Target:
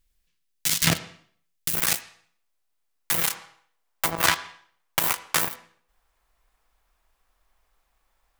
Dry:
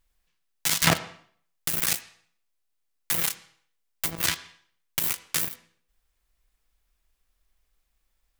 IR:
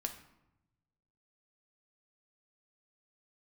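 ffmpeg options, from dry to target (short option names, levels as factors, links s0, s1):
-af "asetnsamples=n=441:p=0,asendcmd='1.75 equalizer g 4;3.31 equalizer g 12.5',equalizer=f=910:w=0.68:g=-8,volume=1.19"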